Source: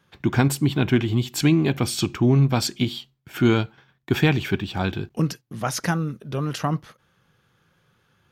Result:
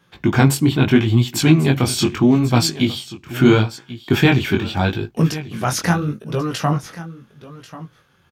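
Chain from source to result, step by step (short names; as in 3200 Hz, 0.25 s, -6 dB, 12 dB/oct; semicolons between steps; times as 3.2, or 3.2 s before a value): echo 1.09 s -16 dB; chorus 0.78 Hz, delay 17 ms, depth 6.9 ms; gain +8.5 dB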